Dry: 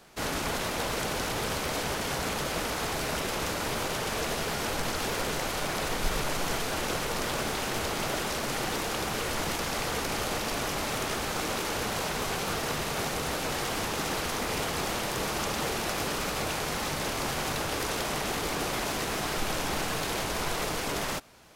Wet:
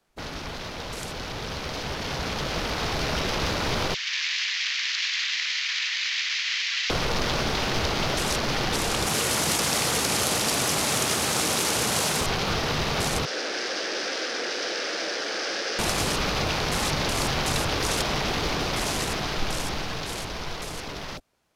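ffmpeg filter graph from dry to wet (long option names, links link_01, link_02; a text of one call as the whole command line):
ffmpeg -i in.wav -filter_complex "[0:a]asettb=1/sr,asplit=3[link_01][link_02][link_03];[link_01]atrim=end=3.944[link_04];[link_02]atrim=start=3.94:end=6.9,asetpts=PTS-STARTPTS,afade=type=in:duration=0.004:curve=qsin,afade=type=out:start_time=2.956:duration=0.004:curve=qsin,asuperpass=centerf=3300:order=8:qfactor=0.82,aeval=exprs='val(0)+0.000316*(sin(2*PI*50*n/s)+sin(2*PI*2*50*n/s)/2+sin(2*PI*3*50*n/s)/3+sin(2*PI*4*50*n/s)/4+sin(2*PI*5*50*n/s)/5)':channel_layout=same,aecho=1:1:188:0.708,atrim=end_sample=130536[link_05];[link_03]atrim=start=6.896[link_06];[link_04][link_05]acrossfade=duration=0.004:curve1=hsin:curve2=qsin[link_07];[link_07][link_06]acrossfade=duration=0.004:curve1=qsin:curve2=hsin,asettb=1/sr,asplit=3[link_08][link_09][link_10];[link_08]atrim=end=9.064[link_11];[link_09]atrim=start=9.06:end=12.21,asetpts=PTS-STARTPTS,afade=type=in:duration=0.004:curve=qsin,afade=type=out:start_time=3.146:duration=0.004:curve=qsin,highpass=110,equalizer=frequency=13000:width_type=o:width=1.4:gain=6,aeval=exprs='clip(val(0),-1,0.0708)':channel_layout=same[link_12];[link_10]atrim=start=12.206[link_13];[link_11][link_12]acrossfade=duration=0.004:curve1=hsin:curve2=qsin[link_14];[link_14][link_13]acrossfade=duration=0.004:curve1=qsin:curve2=hsin,asettb=1/sr,asplit=3[link_15][link_16][link_17];[link_15]atrim=end=13.254[link_18];[link_16]atrim=start=13.25:end=15.79,asetpts=PTS-STARTPTS,afade=type=in:duration=0.004:curve=qsin,afade=type=out:start_time=2.536:duration=0.004:curve=qsin,flanger=delay=15:depth=5.6:speed=1.1,aeval=exprs='0.02*(abs(mod(val(0)/0.02+3,4)-2)-1)':channel_layout=same,highpass=frequency=270:width=0.5412,highpass=frequency=270:width=1.3066,equalizer=frequency=340:width_type=q:width=4:gain=3,equalizer=frequency=520:width_type=q:width=4:gain=7,equalizer=frequency=990:width_type=q:width=4:gain=-9,equalizer=frequency=1600:width_type=q:width=4:gain=7,equalizer=frequency=5100:width_type=q:width=4:gain=9,lowpass=frequency=9400:width=0.5412,lowpass=frequency=9400:width=1.3066[link_19];[link_17]atrim=start=15.786[link_20];[link_18][link_19]acrossfade=duration=0.004:curve1=hsin:curve2=qsin[link_21];[link_21][link_20]acrossfade=duration=0.004:curve1=qsin:curve2=hsin,acrossover=split=160|3000[link_22][link_23][link_24];[link_23]acompressor=threshold=-37dB:ratio=3[link_25];[link_22][link_25][link_24]amix=inputs=3:normalize=0,afwtdn=0.00794,dynaudnorm=framelen=150:gausssize=31:maxgain=9.5dB" out.wav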